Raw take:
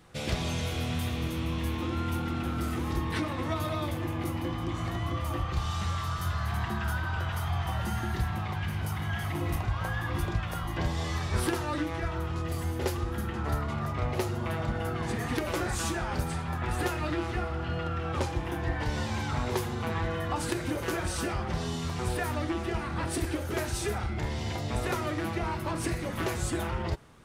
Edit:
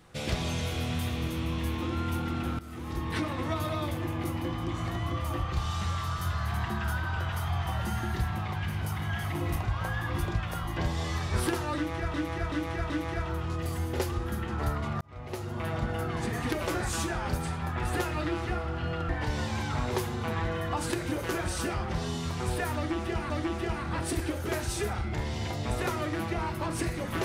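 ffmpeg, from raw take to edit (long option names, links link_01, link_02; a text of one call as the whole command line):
ffmpeg -i in.wav -filter_complex "[0:a]asplit=8[link_01][link_02][link_03][link_04][link_05][link_06][link_07][link_08];[link_01]atrim=end=2.59,asetpts=PTS-STARTPTS,afade=type=out:start_time=2.586:duration=0.004:curve=hsin:silence=0.133352[link_09];[link_02]atrim=start=2.59:end=12.142,asetpts=PTS-STARTPTS,afade=type=in:duration=0.6:silence=0.133352[link_10];[link_03]atrim=start=11.758:end=12.142[link_11];[link_04]atrim=start=11.758:end=12.142[link_12];[link_05]atrim=start=11.758:end=13.87,asetpts=PTS-STARTPTS,afade=type=out:start_time=2.108:duration=0.004:curve=hsin[link_13];[link_06]atrim=start=13.87:end=17.952,asetpts=PTS-STARTPTS,afade=type=in:duration=0.73[link_14];[link_07]atrim=start=18.678:end=22.892[link_15];[link_08]atrim=start=22.348[link_16];[link_09][link_10]concat=n=2:v=0:a=1[link_17];[link_17][link_11]acrossfade=duration=0.004:curve1=hsin:curve2=hsin[link_18];[link_18][link_12]acrossfade=duration=0.004:curve1=hsin:curve2=hsin[link_19];[link_13][link_14]concat=n=2:v=0:a=1[link_20];[link_19][link_20]acrossfade=duration=0.004:curve1=hsin:curve2=hsin[link_21];[link_21][link_15]acrossfade=duration=0.004:curve1=hsin:curve2=hsin[link_22];[link_22][link_16]acrossfade=duration=0.004:curve1=hsin:curve2=hsin" out.wav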